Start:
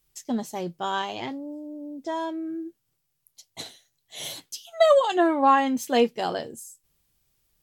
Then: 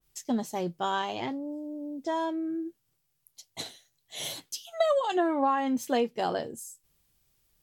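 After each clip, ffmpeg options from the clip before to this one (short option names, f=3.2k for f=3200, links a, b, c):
-af "acompressor=threshold=-23dB:ratio=4,adynamicequalizer=threshold=0.00631:dfrequency=1800:dqfactor=0.7:tfrequency=1800:tqfactor=0.7:attack=5:release=100:ratio=0.375:range=2.5:mode=cutabove:tftype=highshelf"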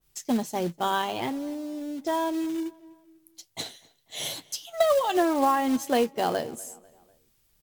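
-filter_complex "[0:a]acrusher=bits=4:mode=log:mix=0:aa=0.000001,asplit=2[a][b];[b]adelay=247,lowpass=f=3.6k:p=1,volume=-22.5dB,asplit=2[c][d];[d]adelay=247,lowpass=f=3.6k:p=1,volume=0.51,asplit=2[e][f];[f]adelay=247,lowpass=f=3.6k:p=1,volume=0.51[g];[a][c][e][g]amix=inputs=4:normalize=0,volume=3dB"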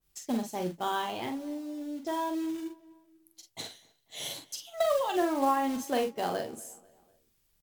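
-filter_complex "[0:a]asplit=2[a][b];[b]adelay=44,volume=-6dB[c];[a][c]amix=inputs=2:normalize=0,volume=-6dB"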